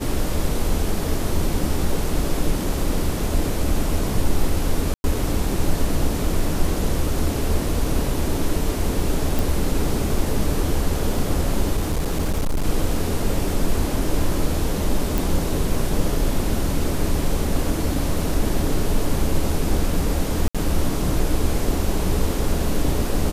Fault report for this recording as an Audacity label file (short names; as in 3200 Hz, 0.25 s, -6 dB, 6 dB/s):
4.940000	5.040000	gap 0.101 s
9.390000	9.390000	pop
11.760000	12.660000	clipped -17 dBFS
15.180000	15.180000	pop
20.480000	20.550000	gap 66 ms